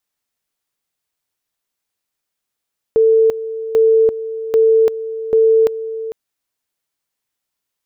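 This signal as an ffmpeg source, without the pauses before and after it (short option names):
-f lavfi -i "aevalsrc='pow(10,(-8-13.5*gte(mod(t,0.79),0.34))/20)*sin(2*PI*446*t)':d=3.16:s=44100"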